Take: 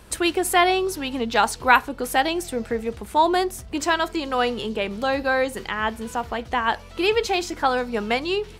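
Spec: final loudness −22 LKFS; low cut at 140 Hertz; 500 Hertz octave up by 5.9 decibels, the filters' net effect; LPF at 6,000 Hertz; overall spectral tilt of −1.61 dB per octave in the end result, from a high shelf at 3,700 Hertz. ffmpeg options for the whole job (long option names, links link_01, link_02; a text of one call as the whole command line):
ffmpeg -i in.wav -af "highpass=140,lowpass=6000,equalizer=frequency=500:width_type=o:gain=7.5,highshelf=frequency=3700:gain=-5.5,volume=-2dB" out.wav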